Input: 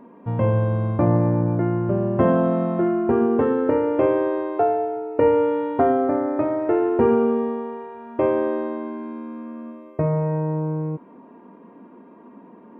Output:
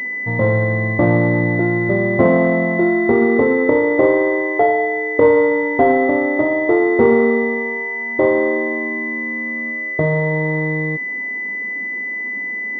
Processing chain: bass shelf 210 Hz -7 dB; class-D stage that switches slowly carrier 2 kHz; trim +7 dB

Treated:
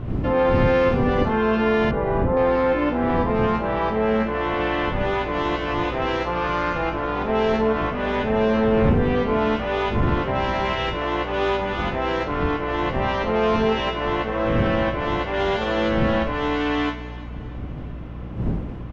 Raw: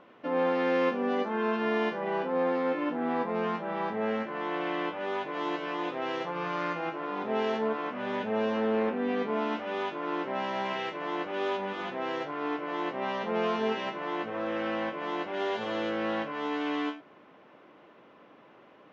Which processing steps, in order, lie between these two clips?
wind noise 180 Hz -37 dBFS; Schroeder reverb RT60 1.8 s, combs from 32 ms, DRR 10 dB; hum 60 Hz, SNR 14 dB; in parallel at +2 dB: peak limiter -22 dBFS, peak gain reduction 9.5 dB; 1.91–2.37 s: on the sum: low-pass 1.4 kHz 12 dB/octave; on a send: feedback delay 331 ms, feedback 51%, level -20 dB; on the sum: trim +2 dB

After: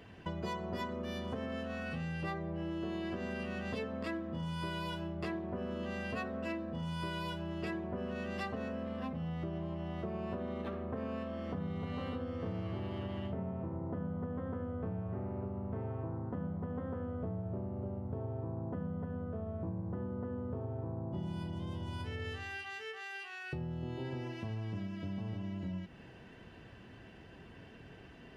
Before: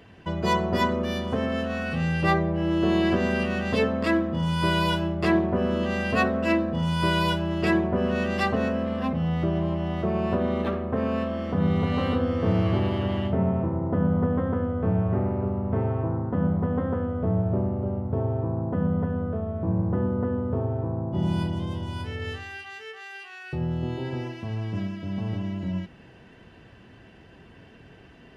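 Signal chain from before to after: compression, threshold -33 dBFS, peak gain reduction 15 dB; trim -3.5 dB

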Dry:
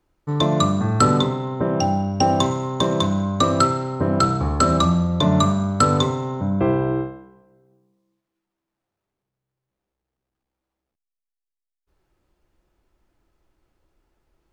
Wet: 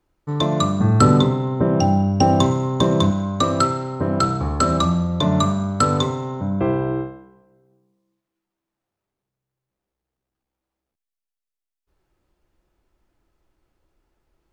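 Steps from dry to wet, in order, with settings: 0.80–3.11 s: bass shelf 430 Hz +7 dB; trim -1 dB

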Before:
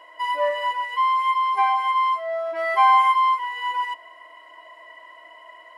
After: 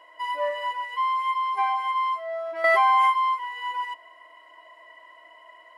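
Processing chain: 2.64–3.10 s: level flattener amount 100%; trim -4.5 dB

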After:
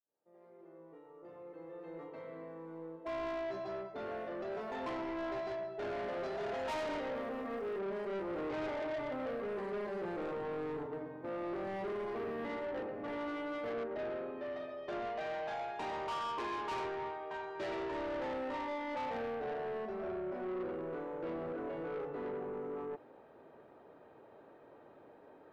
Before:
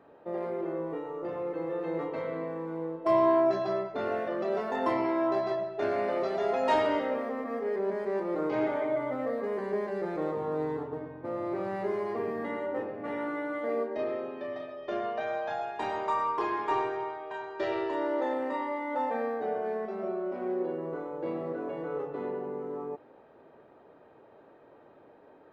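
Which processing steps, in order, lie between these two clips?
fade-in on the opening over 7.58 s; 10.86–11.64 s: high-pass 150 Hz; 13.71–14.41 s: treble shelf 4.9 kHz -> 3.5 kHz -11 dB; saturation -33.5 dBFS, distortion -9 dB; 7.15–7.78 s: crackle 170 per s -> 420 per s -58 dBFS; trim -2 dB

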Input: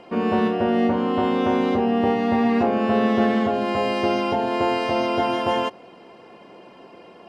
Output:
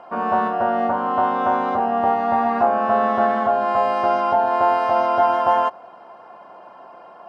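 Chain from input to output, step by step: high-order bell 980 Hz +15.5 dB; trim -8 dB

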